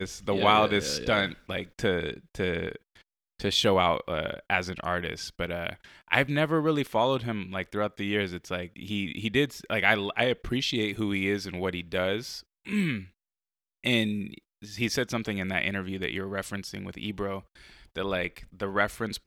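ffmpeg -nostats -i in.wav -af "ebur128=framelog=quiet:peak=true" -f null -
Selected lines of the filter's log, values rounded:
Integrated loudness:
  I:         -28.4 LUFS
  Threshold: -38.8 LUFS
Loudness range:
  LRA:         4.1 LU
  Threshold: -49.1 LUFS
  LRA low:   -31.6 LUFS
  LRA high:  -27.6 LUFS
True peak:
  Peak:       -5.6 dBFS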